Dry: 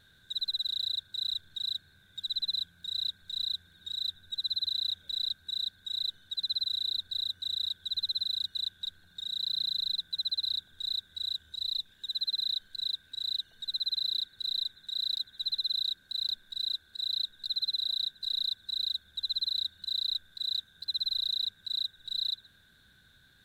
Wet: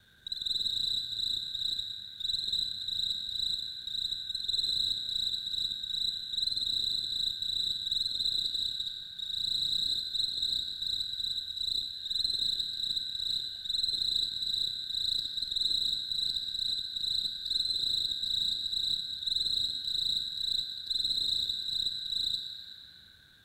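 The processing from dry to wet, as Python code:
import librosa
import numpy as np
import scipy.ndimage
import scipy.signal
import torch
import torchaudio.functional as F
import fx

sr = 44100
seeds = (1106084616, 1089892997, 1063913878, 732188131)

y = fx.local_reverse(x, sr, ms=53.0)
y = fx.rev_schroeder(y, sr, rt60_s=2.1, comb_ms=28, drr_db=3.0)
y = fx.cheby_harmonics(y, sr, harmonics=(2, 6), levels_db=(-23, -31), full_scale_db=-18.0)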